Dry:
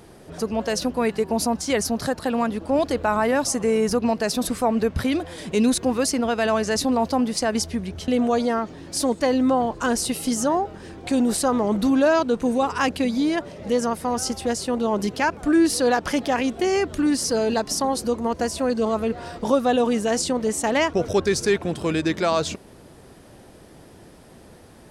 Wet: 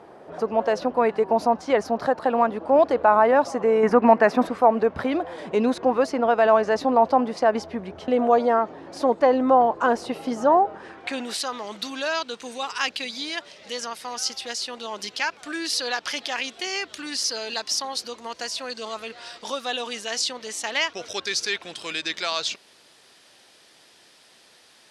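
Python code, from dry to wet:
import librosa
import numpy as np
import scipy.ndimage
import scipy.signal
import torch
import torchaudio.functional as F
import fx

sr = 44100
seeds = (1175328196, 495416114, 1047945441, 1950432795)

y = fx.dynamic_eq(x, sr, hz=8500.0, q=1.4, threshold_db=-42.0, ratio=4.0, max_db=-6)
y = fx.filter_sweep_bandpass(y, sr, from_hz=800.0, to_hz=4000.0, start_s=10.69, end_s=11.46, q=1.1)
y = fx.graphic_eq(y, sr, hz=(250, 1000, 2000, 4000), db=(7, 4, 10, -5), at=(3.83, 4.47))
y = y * 10.0 ** (6.5 / 20.0)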